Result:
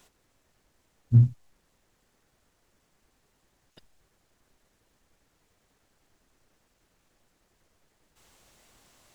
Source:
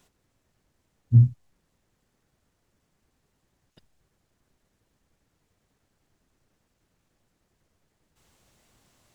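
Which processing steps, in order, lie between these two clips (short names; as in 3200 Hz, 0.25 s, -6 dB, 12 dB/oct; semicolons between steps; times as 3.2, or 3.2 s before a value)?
bell 120 Hz -7 dB 2.5 oct; gain +5 dB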